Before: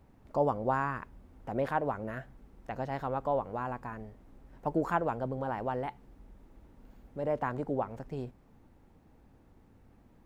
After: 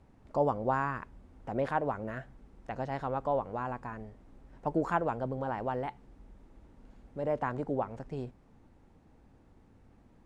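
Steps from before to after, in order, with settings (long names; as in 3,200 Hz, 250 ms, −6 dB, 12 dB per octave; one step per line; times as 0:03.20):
low-pass filter 9,700 Hz 24 dB per octave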